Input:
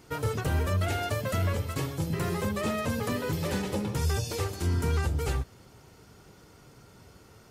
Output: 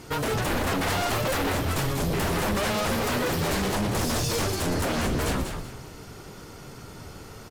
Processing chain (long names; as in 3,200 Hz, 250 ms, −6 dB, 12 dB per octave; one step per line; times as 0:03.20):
sine wavefolder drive 13 dB, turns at −17 dBFS
on a send: echo with shifted repeats 191 ms, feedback 31%, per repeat −96 Hz, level −6.5 dB
on the sum: level −6.5 dB